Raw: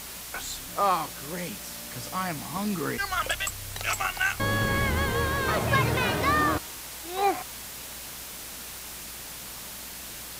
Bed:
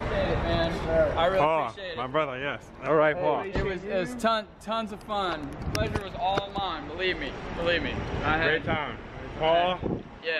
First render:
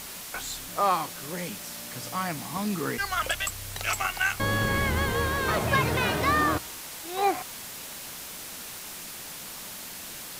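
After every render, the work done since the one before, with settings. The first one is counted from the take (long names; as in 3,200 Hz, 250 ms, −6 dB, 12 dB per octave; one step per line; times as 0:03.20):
hum removal 60 Hz, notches 2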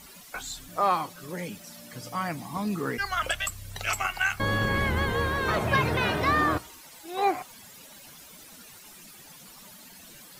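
broadband denoise 13 dB, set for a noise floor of −40 dBFS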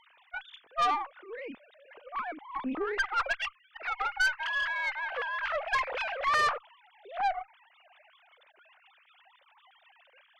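three sine waves on the formant tracks
tube saturation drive 22 dB, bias 0.5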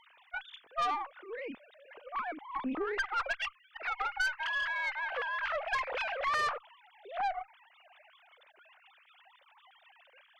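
downward compressor 2 to 1, threshold −32 dBFS, peak gain reduction 5 dB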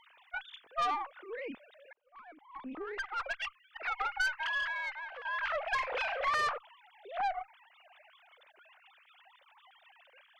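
0:01.93–0:03.86: fade in
0:04.55–0:05.25: fade out, to −13 dB
0:05.76–0:06.31: double-tracking delay 37 ms −8 dB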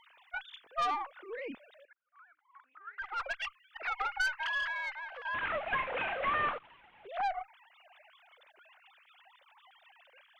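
0:01.85–0:03.02: four-pole ladder band-pass 1,500 Hz, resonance 75%
0:05.34–0:07.07: variable-slope delta modulation 16 kbit/s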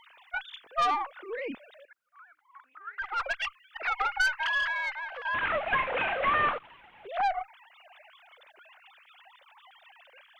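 level +5.5 dB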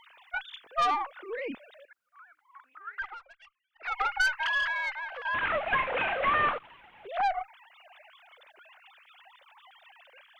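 0:03.01–0:03.97: duck −23.5 dB, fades 0.19 s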